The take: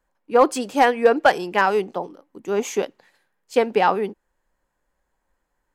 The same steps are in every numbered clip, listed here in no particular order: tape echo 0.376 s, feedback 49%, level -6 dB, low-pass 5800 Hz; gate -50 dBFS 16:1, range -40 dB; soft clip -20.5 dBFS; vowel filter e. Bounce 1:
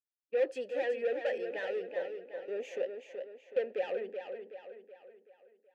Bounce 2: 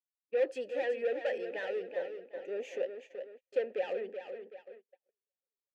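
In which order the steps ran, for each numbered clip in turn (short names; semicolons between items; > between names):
soft clip > vowel filter > gate > tape echo; soft clip > tape echo > vowel filter > gate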